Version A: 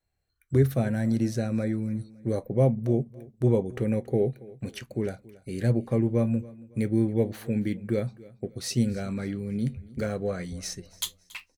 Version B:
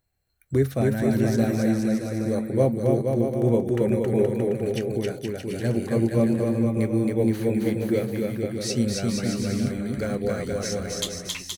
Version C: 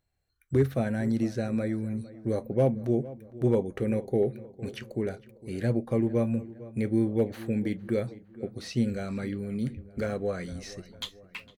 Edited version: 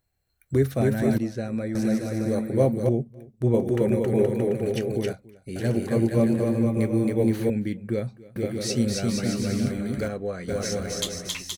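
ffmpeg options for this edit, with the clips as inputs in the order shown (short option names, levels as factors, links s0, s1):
-filter_complex "[2:a]asplit=2[s0][s1];[0:a]asplit=3[s2][s3][s4];[1:a]asplit=6[s5][s6][s7][s8][s9][s10];[s5]atrim=end=1.182[s11];[s0]atrim=start=1.178:end=1.752[s12];[s6]atrim=start=1.748:end=2.892[s13];[s2]atrim=start=2.888:end=3.542[s14];[s7]atrim=start=3.538:end=5.132[s15];[s3]atrim=start=5.128:end=5.562[s16];[s8]atrim=start=5.558:end=7.502[s17];[s4]atrim=start=7.498:end=8.362[s18];[s9]atrim=start=8.358:end=10.082[s19];[s1]atrim=start=10.078:end=10.482[s20];[s10]atrim=start=10.478[s21];[s11][s12]acrossfade=d=0.004:c1=hsin:c2=hsin[s22];[s22][s13]acrossfade=d=0.004:c1=hsin:c2=hsin[s23];[s23][s14]acrossfade=d=0.004:c1=hsin:c2=hsin[s24];[s24][s15]acrossfade=d=0.004:c1=hsin:c2=hsin[s25];[s25][s16]acrossfade=d=0.004:c1=hsin:c2=hsin[s26];[s26][s17]acrossfade=d=0.004:c1=hsin:c2=hsin[s27];[s27][s18]acrossfade=d=0.004:c1=hsin:c2=hsin[s28];[s28][s19]acrossfade=d=0.004:c1=hsin:c2=hsin[s29];[s29][s20]acrossfade=d=0.004:c1=hsin:c2=hsin[s30];[s30][s21]acrossfade=d=0.004:c1=hsin:c2=hsin"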